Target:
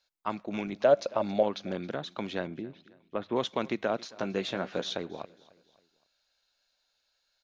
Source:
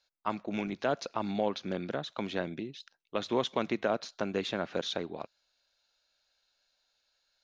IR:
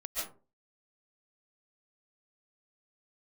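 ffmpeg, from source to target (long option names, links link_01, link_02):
-filter_complex "[0:a]asettb=1/sr,asplit=3[link_01][link_02][link_03];[link_01]atrim=end=0.834[link_04];[link_02]atrim=start=0.83:end=1.43,asetpts=PTS-STARTPTS,afade=type=in:duration=0.004:curve=qsin,afade=type=out:start_time=0.596:duration=0.004:curve=qsin,equalizer=frequency=580:width_type=o:width=0.34:gain=15[link_05];[link_03]atrim=start=1.426[link_06];[link_04][link_05]acrossfade=duration=0.004:curve1=hsin:curve2=qsin[link_07];[link_07][link_06]acrossfade=duration=0.004:curve1=qsin:curve2=hsin,asettb=1/sr,asplit=3[link_08][link_09][link_10];[link_08]atrim=end=2.474[link_11];[link_09]atrim=start=2.47:end=3.36,asetpts=PTS-STARTPTS,afade=type=in:duration=0.004:curve=qsin,afade=type=out:start_time=0.886:duration=0.004:curve=qsin,lowpass=1700[link_12];[link_10]atrim=start=3.356[link_13];[link_11][link_12]acrossfade=duration=0.004:curve1=hsin:curve2=qsin[link_14];[link_14][link_13]acrossfade=duration=0.004:curve1=qsin:curve2=hsin,asettb=1/sr,asplit=3[link_15][link_16][link_17];[link_15]atrim=end=4.144[link_18];[link_16]atrim=start=4.14:end=4.97,asetpts=PTS-STARTPTS,afade=type=in:duration=0.004:curve=qsin,afade=type=out:start_time=0.826:duration=0.004:curve=qsin,asplit=2[link_19][link_20];[link_20]adelay=16,volume=-8dB[link_21];[link_19][link_21]amix=inputs=2:normalize=0,atrim=end_sample=36603[link_22];[link_17]atrim=start=4.966[link_23];[link_18][link_22]acrossfade=duration=0.004:curve1=hsin:curve2=qsin[link_24];[link_24][link_23]acrossfade=duration=0.004:curve1=qsin:curve2=hsin,asplit=2[link_25][link_26];[link_26]aecho=0:1:272|544|816:0.0794|0.0357|0.0161[link_27];[link_25][link_27]amix=inputs=2:normalize=0"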